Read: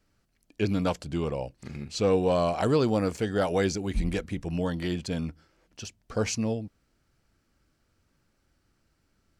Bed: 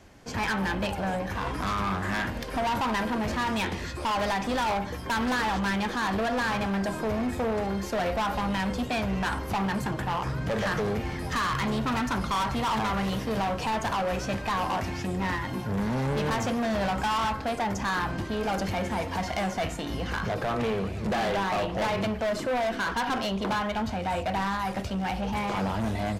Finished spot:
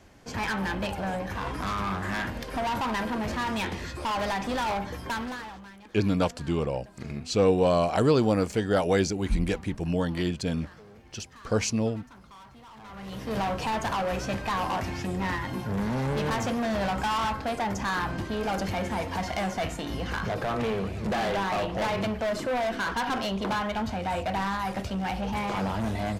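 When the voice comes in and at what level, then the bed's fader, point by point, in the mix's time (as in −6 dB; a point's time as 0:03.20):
5.35 s, +2.0 dB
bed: 0:05.07 −1.5 dB
0:05.77 −22.5 dB
0:12.74 −22.5 dB
0:13.36 −0.5 dB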